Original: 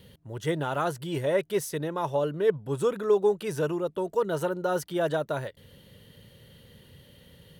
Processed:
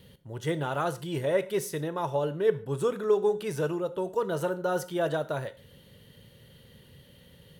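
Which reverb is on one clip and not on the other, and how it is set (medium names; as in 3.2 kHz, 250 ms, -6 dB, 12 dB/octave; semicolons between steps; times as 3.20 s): gated-style reverb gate 170 ms falling, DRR 11.5 dB; trim -1.5 dB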